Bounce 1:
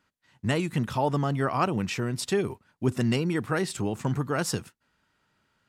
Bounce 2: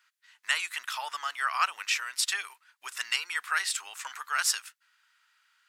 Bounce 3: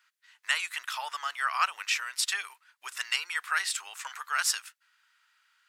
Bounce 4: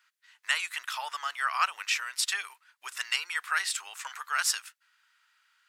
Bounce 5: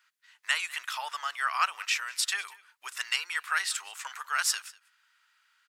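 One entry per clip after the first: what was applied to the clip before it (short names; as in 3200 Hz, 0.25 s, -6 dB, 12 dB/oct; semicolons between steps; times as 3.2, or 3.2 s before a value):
HPF 1300 Hz 24 dB/oct; gain +6 dB
tone controls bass -13 dB, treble -1 dB
nothing audible
echo 0.196 s -22.5 dB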